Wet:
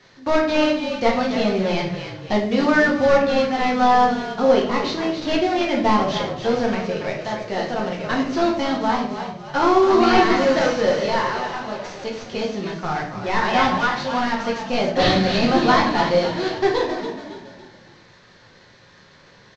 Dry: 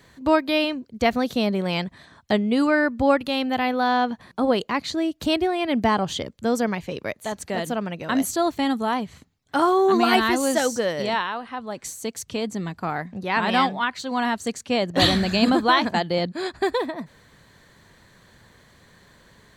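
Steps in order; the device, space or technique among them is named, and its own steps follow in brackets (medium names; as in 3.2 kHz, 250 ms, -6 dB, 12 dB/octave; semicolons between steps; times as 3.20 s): 3.98–4.43 s: bass shelf 130 Hz +4.5 dB; frequency-shifting echo 280 ms, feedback 42%, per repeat -41 Hz, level -10 dB; early wireless headset (high-pass 240 Hz 6 dB/octave; CVSD coder 32 kbps); simulated room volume 73 m³, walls mixed, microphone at 0.93 m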